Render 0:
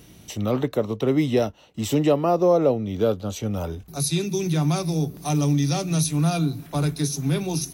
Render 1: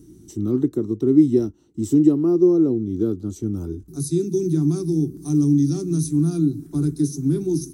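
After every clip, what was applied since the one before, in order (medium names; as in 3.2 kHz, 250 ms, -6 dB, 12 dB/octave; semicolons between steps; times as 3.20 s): FFT filter 200 Hz 0 dB, 350 Hz +11 dB, 540 Hz -21 dB, 1.4 kHz -13 dB, 2.6 kHz -24 dB, 5.8 kHz -7 dB, 8.7 kHz -1 dB, 12 kHz -10 dB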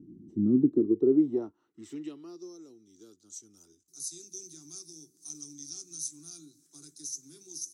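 band-pass sweep 220 Hz -> 6.4 kHz, 0.62–2.57 s; trim +1.5 dB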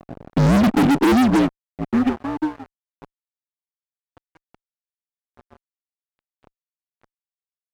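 mistuned SSB -55 Hz 150–2100 Hz; fuzz box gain 40 dB, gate -46 dBFS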